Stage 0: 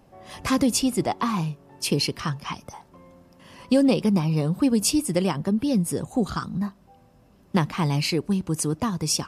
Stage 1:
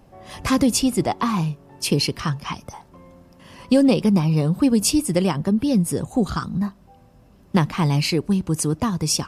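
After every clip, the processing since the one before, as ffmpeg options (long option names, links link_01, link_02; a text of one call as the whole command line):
ffmpeg -i in.wav -af "lowshelf=frequency=100:gain=6,volume=2.5dB" out.wav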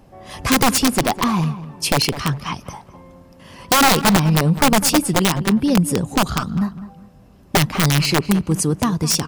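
ffmpeg -i in.wav -filter_complex "[0:a]aeval=exprs='(mod(3.76*val(0)+1,2)-1)/3.76':channel_layout=same,asplit=2[link_01][link_02];[link_02]adelay=203,lowpass=frequency=2200:poles=1,volume=-13.5dB,asplit=2[link_03][link_04];[link_04]adelay=203,lowpass=frequency=2200:poles=1,volume=0.29,asplit=2[link_05][link_06];[link_06]adelay=203,lowpass=frequency=2200:poles=1,volume=0.29[link_07];[link_01][link_03][link_05][link_07]amix=inputs=4:normalize=0,volume=3dB" out.wav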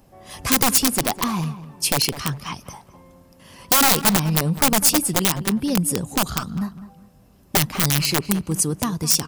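ffmpeg -i in.wav -af "crystalizer=i=1.5:c=0,volume=-5.5dB" out.wav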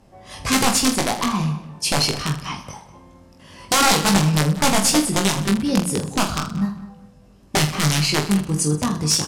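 ffmpeg -i in.wav -filter_complex "[0:a]lowpass=8100,asplit=2[link_01][link_02];[link_02]aecho=0:1:20|46|79.8|123.7|180.9:0.631|0.398|0.251|0.158|0.1[link_03];[link_01][link_03]amix=inputs=2:normalize=0" out.wav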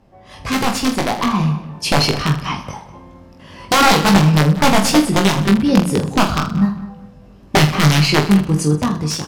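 ffmpeg -i in.wav -af "equalizer=frequency=8900:width_type=o:width=1.5:gain=-11,dynaudnorm=framelen=430:gausssize=5:maxgain=11.5dB" out.wav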